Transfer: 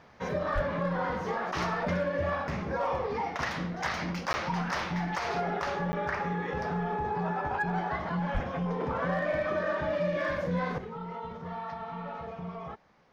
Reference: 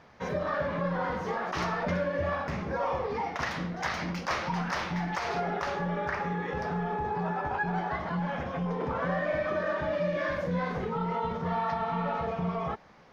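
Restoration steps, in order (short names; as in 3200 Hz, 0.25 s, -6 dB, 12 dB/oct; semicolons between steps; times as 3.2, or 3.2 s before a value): clip repair -21.5 dBFS; 0.54–0.66 HPF 140 Hz 24 dB/oct; 8.33–8.45 HPF 140 Hz 24 dB/oct; interpolate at 4.33/5.92, 10 ms; gain 0 dB, from 10.78 s +8 dB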